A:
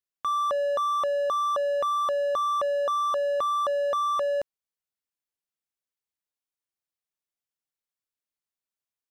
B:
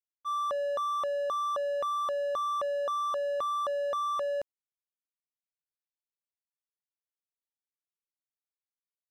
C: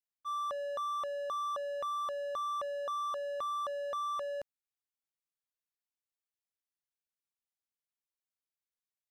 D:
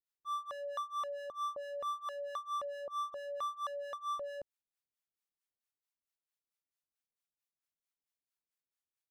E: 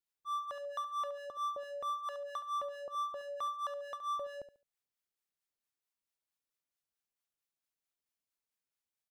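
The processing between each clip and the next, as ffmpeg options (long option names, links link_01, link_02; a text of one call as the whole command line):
ffmpeg -i in.wav -af "agate=range=-33dB:threshold=-20dB:ratio=3:detection=peak,volume=1dB" out.wav
ffmpeg -i in.wav -af "equalizer=frequency=390:width_type=o:width=2.2:gain=-4,volume=-3.5dB" out.wav
ffmpeg -i in.wav -filter_complex "[0:a]acrossover=split=670[link_01][link_02];[link_01]aeval=exprs='val(0)*(1-1/2+1/2*cos(2*PI*4.5*n/s))':channel_layout=same[link_03];[link_02]aeval=exprs='val(0)*(1-1/2-1/2*cos(2*PI*4.5*n/s))':channel_layout=same[link_04];[link_03][link_04]amix=inputs=2:normalize=0,volume=1.5dB" out.wav
ffmpeg -i in.wav -af "aecho=1:1:71|142|213:0.237|0.0593|0.0148" out.wav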